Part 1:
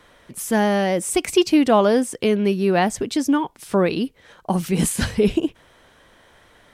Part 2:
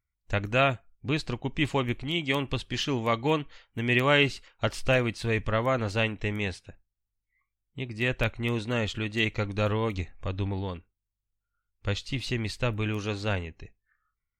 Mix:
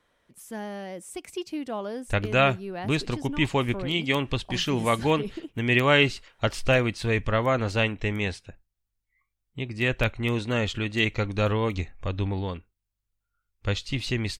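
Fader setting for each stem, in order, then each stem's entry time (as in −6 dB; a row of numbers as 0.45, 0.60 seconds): −17.0, +2.5 decibels; 0.00, 1.80 seconds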